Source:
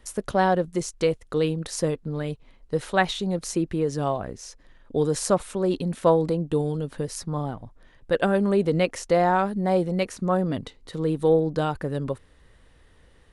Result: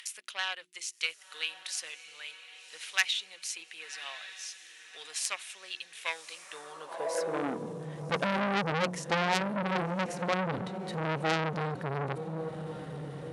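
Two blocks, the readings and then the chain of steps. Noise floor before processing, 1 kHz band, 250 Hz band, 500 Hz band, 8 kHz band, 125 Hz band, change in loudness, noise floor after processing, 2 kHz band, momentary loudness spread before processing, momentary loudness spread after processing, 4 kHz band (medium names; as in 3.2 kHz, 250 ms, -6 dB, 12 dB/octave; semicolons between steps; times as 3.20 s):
-56 dBFS, -7.0 dB, -11.5 dB, -12.5 dB, -3.0 dB, -10.0 dB, -8.5 dB, -55 dBFS, -0.5 dB, 10 LU, 14 LU, +2.0 dB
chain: treble shelf 9 kHz -2.5 dB; hum notches 60/120/180/240/300/360 Hz; upward compressor, threshold -31 dBFS; Chebyshev shaper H 3 -16 dB, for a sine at -7 dBFS; echo that smears into a reverb 1121 ms, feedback 44%, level -14 dB; high-pass sweep 2.5 kHz -> 140 Hz, 6.37–7.87 s; transformer saturation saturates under 3.9 kHz; trim +2 dB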